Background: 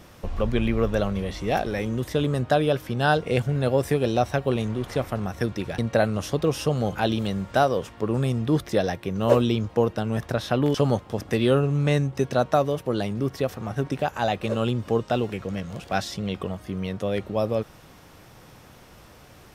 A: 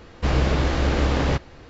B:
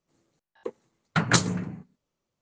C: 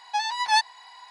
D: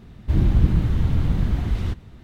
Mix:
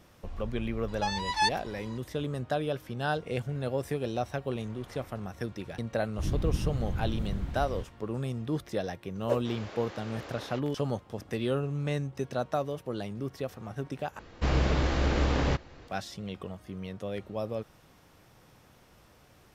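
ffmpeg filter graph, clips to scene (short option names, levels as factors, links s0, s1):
-filter_complex "[1:a]asplit=2[s0][s1];[0:a]volume=0.335[s2];[s0]highpass=400[s3];[s2]asplit=2[s4][s5];[s4]atrim=end=14.194[s6];[s1]atrim=end=1.69,asetpts=PTS-STARTPTS,volume=0.531[s7];[s5]atrim=start=15.876[s8];[3:a]atrim=end=1.1,asetpts=PTS-STARTPTS,volume=0.531,afade=t=in:d=0.004:c=hsin,afade=t=out:st=1.096:d=0.004:c=hsin,adelay=880[s9];[4:a]atrim=end=2.23,asetpts=PTS-STARTPTS,volume=0.237,afade=t=in:d=0.004:c=hsin,afade=t=out:st=2.226:d=0.004:c=hsin,adelay=5900[s10];[s3]atrim=end=1.69,asetpts=PTS-STARTPTS,volume=0.133,afade=t=in:d=0.004:c=hsin,afade=t=out:st=1.686:d=0.004:c=hsin,adelay=406602S[s11];[s6][s7]acrossfade=d=0.004:c1=hsin:c2=hsin[s12];[s12][s8]acrossfade=d=0.004:c1=hsin:c2=hsin[s13];[s13][s9][s10][s11]amix=inputs=4:normalize=0"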